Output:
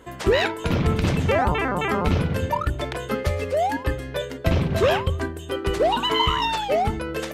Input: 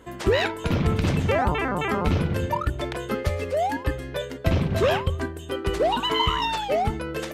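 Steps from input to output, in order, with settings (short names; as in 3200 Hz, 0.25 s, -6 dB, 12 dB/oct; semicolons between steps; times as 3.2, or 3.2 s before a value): notches 50/100/150/200/250/300/350 Hz; gain +2 dB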